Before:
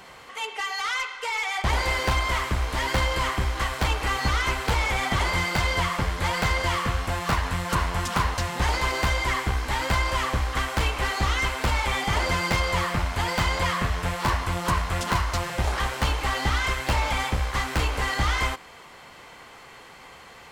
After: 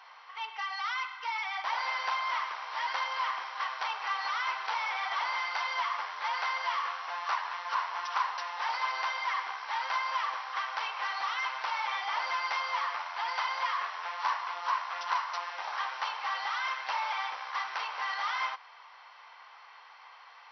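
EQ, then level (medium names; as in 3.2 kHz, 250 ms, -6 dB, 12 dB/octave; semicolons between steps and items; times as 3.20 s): ladder high-pass 790 Hz, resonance 45%; brick-wall FIR low-pass 6 kHz; 0.0 dB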